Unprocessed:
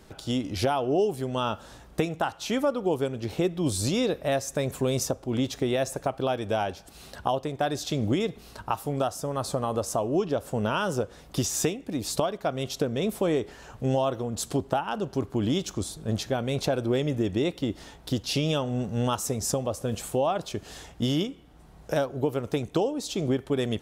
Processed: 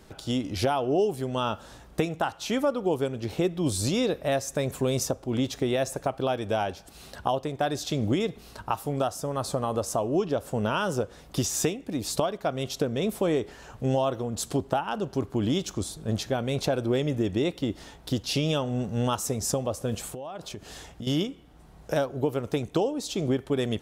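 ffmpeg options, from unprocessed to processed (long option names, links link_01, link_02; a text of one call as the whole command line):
ffmpeg -i in.wav -filter_complex "[0:a]asettb=1/sr,asplit=3[link_01][link_02][link_03];[link_01]atrim=end=20.124[link_04];[link_02]atrim=start=20.12:end=21.07,asetpts=PTS-STARTPTS,afade=type=in:duration=0.004:curve=qsin,afade=type=out:start_time=0.946:duration=0.004:curve=qsin,acompressor=threshold=-33dB:ratio=16:attack=3.2:release=140:knee=1:detection=peak[link_05];[link_03]atrim=start=21.066[link_06];[link_04][link_05]acrossfade=duration=0.004:curve1=hsin:curve2=qsin[link_07];[link_07][link_06]acrossfade=duration=0.004:curve1=qsin:curve2=hsin" out.wav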